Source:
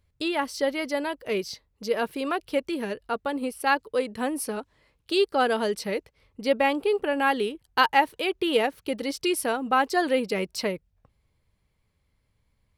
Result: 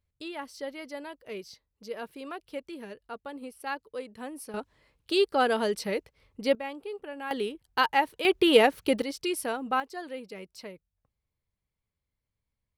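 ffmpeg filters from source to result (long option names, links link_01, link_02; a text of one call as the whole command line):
ffmpeg -i in.wav -af "asetnsamples=nb_out_samples=441:pad=0,asendcmd='4.54 volume volume -1.5dB;6.55 volume volume -14dB;7.31 volume volume -4dB;8.25 volume volume 4dB;9.02 volume volume -5dB;9.8 volume volume -15dB',volume=-11.5dB" out.wav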